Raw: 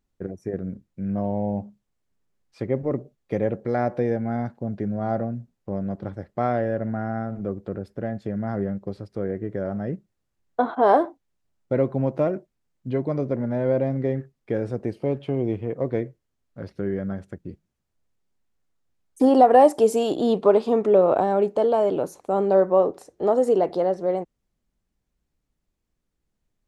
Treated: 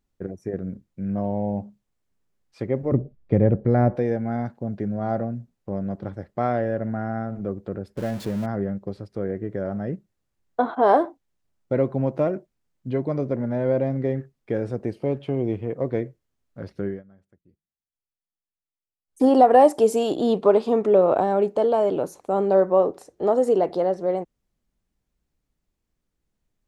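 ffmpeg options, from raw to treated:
-filter_complex "[0:a]asettb=1/sr,asplit=3[a][b][c];[a]atrim=end=2.924[d];[b]atrim=start=2.92:end=3.96,asetpts=PTS-STARTPTS,afade=t=in:d=0.004:c=qsin,afade=t=out:st=1.036:d=0.004:c=qsin,aemphasis=mode=reproduction:type=riaa[e];[c]atrim=start=3.956[f];[d][e]acrossfade=d=0.004:c1=hsin:c2=qsin[g];[g][f]acrossfade=d=0.004:c1=qsin:c2=hsin,asettb=1/sr,asplit=3[h][i][j];[h]atrim=end=7.974[k];[i]atrim=start=7.97:end=8.46,asetpts=PTS-STARTPTS,afade=t=in:d=0.004:c=qsin,afade=t=out:st=0.486:d=0.004:c=qsin,aeval=exprs='val(0)+0.5*0.0211*sgn(val(0))':c=same[l];[j]atrim=start=8.456[m];[k][l]acrossfade=d=0.004:c1=hsin:c2=qsin[n];[n][m]acrossfade=d=0.004:c1=qsin:c2=hsin,asplit=3[o][p][q];[o]atrim=end=17.03,asetpts=PTS-STARTPTS,afade=t=out:st=16.85:d=0.18:silence=0.0668344[r];[p]atrim=start=17.03:end=19.06,asetpts=PTS-STARTPTS,volume=-23.5dB[s];[q]atrim=start=19.06,asetpts=PTS-STARTPTS,afade=t=in:d=0.18:silence=0.0668344[t];[r][s][t]concat=n=3:v=0:a=1"

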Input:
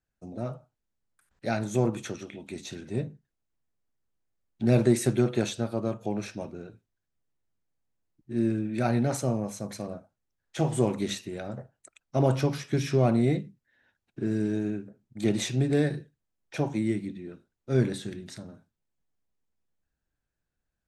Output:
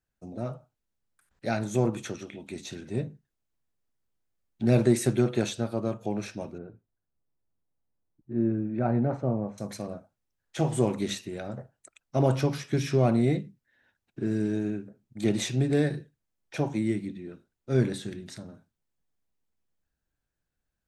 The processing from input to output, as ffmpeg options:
-filter_complex "[0:a]asettb=1/sr,asplit=3[a][b][c];[a]atrim=end=6.584[d];[b]atrim=start=6.58:end=9.58,asetpts=PTS-STARTPTS,afade=t=in:d=0.004:c=qsin,afade=t=out:st=2.996:d=0.004:c=qsin,lowpass=1.2k[e];[c]atrim=start=9.576[f];[d][e]acrossfade=d=0.004:c1=hsin:c2=qsin[g];[g][f]acrossfade=d=0.004:c1=qsin:c2=hsin"

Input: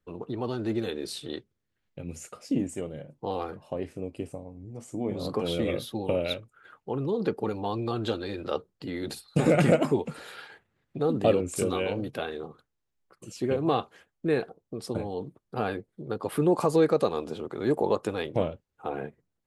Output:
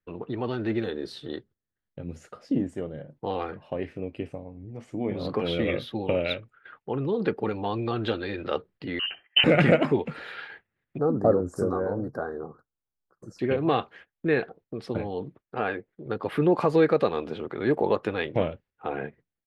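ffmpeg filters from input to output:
-filter_complex "[0:a]asettb=1/sr,asplit=3[a][b][c];[a]atrim=end=0.844[d];[b]atrim=start=0.84:end=3.17,asetpts=PTS-STARTPTS,afade=t=in:d=0.004:c=qsin,afade=t=out:st=2.326:d=0.004:c=qsin,equalizer=f=2.4k:t=o:w=0.71:g=-13[e];[c]atrim=start=3.166[f];[d][e]acrossfade=d=0.004:c1=hsin:c2=qsin[g];[g][f]acrossfade=d=0.004:c1=qsin:c2=hsin,asettb=1/sr,asplit=3[h][i][j];[h]atrim=end=8.994[k];[i]atrim=start=8.99:end=9.44,asetpts=PTS-STARTPTS,afade=t=in:d=0.004:c=qsin,afade=t=out:st=0.446:d=0.004:c=qsin,lowpass=f=2.7k:t=q:w=0.5098,lowpass=f=2.7k:t=q:w=0.6013,lowpass=f=2.7k:t=q:w=0.9,lowpass=f=2.7k:t=q:w=2.563,afreqshift=-3200[l];[j]atrim=start=9.436[m];[k][l]acrossfade=d=0.004:c1=hsin:c2=qsin[n];[n][m]acrossfade=d=0.004:c1=qsin:c2=hsin,asettb=1/sr,asplit=3[o][p][q];[o]atrim=end=10.984[r];[p]atrim=start=10.98:end=13.39,asetpts=PTS-STARTPTS,afade=t=in:d=0.004:c=qsin,afade=t=out:st=2.406:d=0.004:c=qsin,asuperstop=centerf=2800:order=8:qfactor=0.73[s];[q]atrim=start=13.386[t];[r][s]acrossfade=d=0.004:c1=hsin:c2=qsin[u];[u][t]acrossfade=d=0.004:c1=qsin:c2=hsin,asettb=1/sr,asplit=3[v][w][x];[v]atrim=end=15.414[y];[w]atrim=start=15.41:end=16.06,asetpts=PTS-STARTPTS,afade=t=in:d=0.004:c=qsin,afade=t=out:st=0.646:d=0.004:c=qsin,bass=f=250:g=-7,treble=f=4k:g=-10[z];[x]atrim=start=16.056[aa];[y][z]acrossfade=d=0.004:c1=hsin:c2=qsin[ab];[ab][aa]acrossfade=d=0.004:c1=qsin:c2=hsin,agate=range=-10dB:threshold=-54dB:ratio=16:detection=peak,firequalizer=gain_entry='entry(1100,0);entry(1800,7);entry(7500,-17)':delay=0.05:min_phase=1,volume=1.5dB"

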